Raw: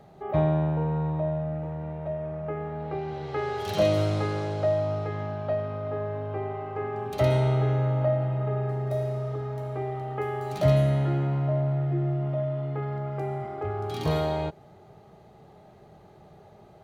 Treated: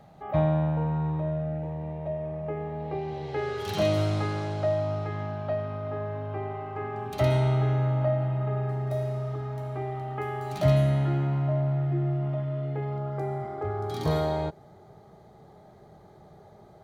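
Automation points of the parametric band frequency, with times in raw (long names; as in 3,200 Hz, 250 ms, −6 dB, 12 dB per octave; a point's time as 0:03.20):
parametric band −13 dB 0.27 octaves
0:00.84 390 Hz
0:01.71 1,400 Hz
0:03.26 1,400 Hz
0:03.87 480 Hz
0:12.31 480 Hz
0:13.19 2,700 Hz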